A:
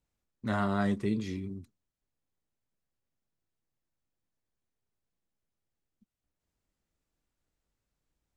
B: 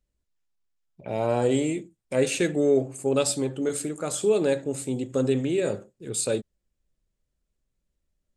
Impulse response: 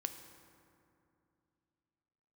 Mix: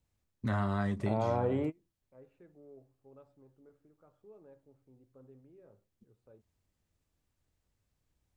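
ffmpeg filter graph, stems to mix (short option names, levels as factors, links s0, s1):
-filter_complex "[0:a]bandreject=f=1400:w=19,volume=1.19,asplit=2[s0][s1];[1:a]lowpass=f=1100:t=q:w=1.9,volume=0.944[s2];[s1]apad=whole_len=369059[s3];[s2][s3]sidechaingate=range=0.0178:threshold=0.00355:ratio=16:detection=peak[s4];[s0][s4]amix=inputs=2:normalize=0,equalizer=f=91:t=o:w=1:g=9.5,acrossover=split=880|1900[s5][s6][s7];[s5]acompressor=threshold=0.0316:ratio=4[s8];[s6]acompressor=threshold=0.0141:ratio=4[s9];[s7]acompressor=threshold=0.002:ratio=4[s10];[s8][s9][s10]amix=inputs=3:normalize=0"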